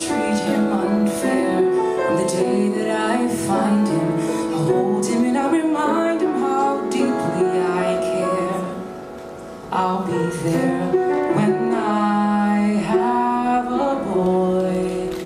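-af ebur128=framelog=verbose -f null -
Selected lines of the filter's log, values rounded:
Integrated loudness:
  I:         -19.6 LUFS
  Threshold: -29.8 LUFS
Loudness range:
  LRA:         3.3 LU
  Threshold: -39.8 LUFS
  LRA low:   -22.2 LUFS
  LRA high:  -18.9 LUFS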